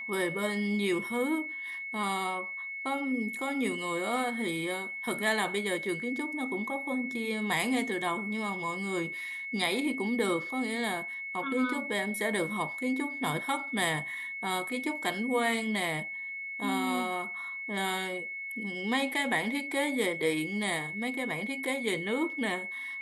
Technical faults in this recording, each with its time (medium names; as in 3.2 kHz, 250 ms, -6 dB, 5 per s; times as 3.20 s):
whine 2.2 kHz -36 dBFS